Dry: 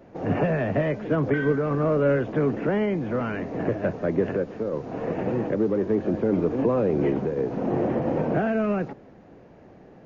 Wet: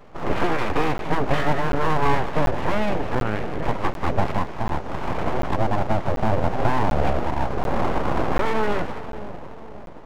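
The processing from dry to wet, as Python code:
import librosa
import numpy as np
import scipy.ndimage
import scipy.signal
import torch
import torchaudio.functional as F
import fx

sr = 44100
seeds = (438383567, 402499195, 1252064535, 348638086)

y = fx.lpc_vocoder(x, sr, seeds[0], excitation='pitch_kept', order=10, at=(3.15, 3.63))
y = fx.echo_split(y, sr, split_hz=590.0, low_ms=534, high_ms=189, feedback_pct=52, wet_db=-11.0)
y = np.abs(y)
y = fx.buffer_crackle(y, sr, first_s=0.98, period_s=0.74, block=512, kind='zero')
y = F.gain(torch.from_numpy(y), 4.5).numpy()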